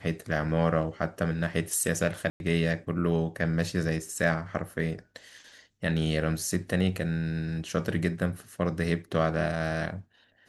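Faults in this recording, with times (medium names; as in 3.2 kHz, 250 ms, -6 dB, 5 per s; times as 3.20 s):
2.30–2.40 s: dropout 101 ms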